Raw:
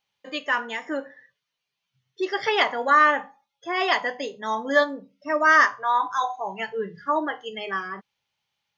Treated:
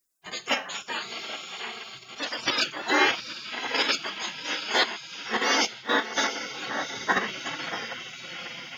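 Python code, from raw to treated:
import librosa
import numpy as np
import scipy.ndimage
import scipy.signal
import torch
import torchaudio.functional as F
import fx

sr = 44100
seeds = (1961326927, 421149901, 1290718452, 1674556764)

p1 = fx.echo_diffused(x, sr, ms=731, feedback_pct=46, wet_db=-6.5)
p2 = fx.level_steps(p1, sr, step_db=21)
p3 = p1 + F.gain(torch.from_numpy(p2), 1.5).numpy()
p4 = fx.spec_gate(p3, sr, threshold_db=-20, keep='weak')
p5 = fx.rider(p4, sr, range_db=4, speed_s=2.0)
p6 = fx.band_widen(p5, sr, depth_pct=70, at=(5.65, 6.17))
y = F.gain(torch.from_numpy(p6), 6.5).numpy()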